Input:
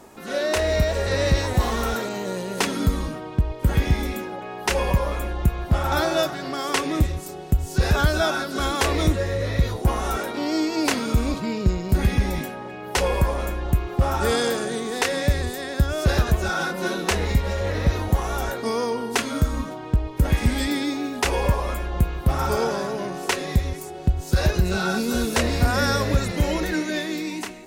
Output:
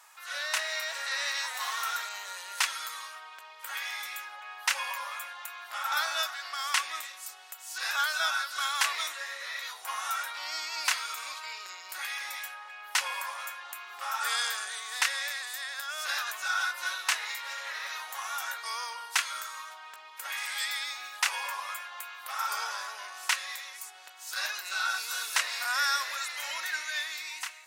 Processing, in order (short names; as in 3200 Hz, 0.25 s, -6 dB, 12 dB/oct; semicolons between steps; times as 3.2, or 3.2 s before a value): HPF 1100 Hz 24 dB/oct; gain -2 dB